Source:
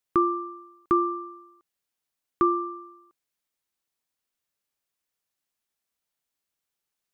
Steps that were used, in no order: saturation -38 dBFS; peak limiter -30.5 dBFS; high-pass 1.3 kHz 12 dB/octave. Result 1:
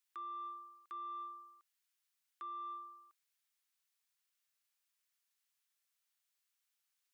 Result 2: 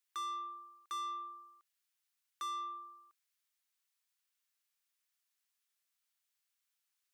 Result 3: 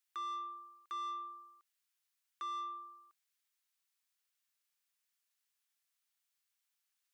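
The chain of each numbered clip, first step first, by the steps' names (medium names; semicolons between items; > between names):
peak limiter > high-pass > saturation; high-pass > saturation > peak limiter; high-pass > peak limiter > saturation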